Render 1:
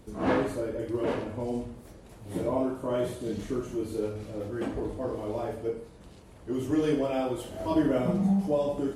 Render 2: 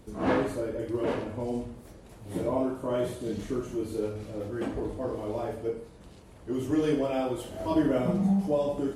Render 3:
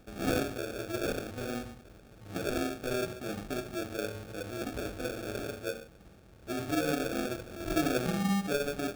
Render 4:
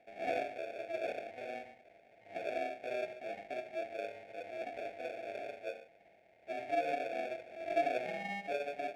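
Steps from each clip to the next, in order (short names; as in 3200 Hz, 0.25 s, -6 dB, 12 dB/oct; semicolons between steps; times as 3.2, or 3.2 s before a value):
nothing audible
sample-rate reducer 1000 Hz, jitter 0%; gain -4.5 dB
double band-pass 1200 Hz, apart 1.6 oct; gain +6 dB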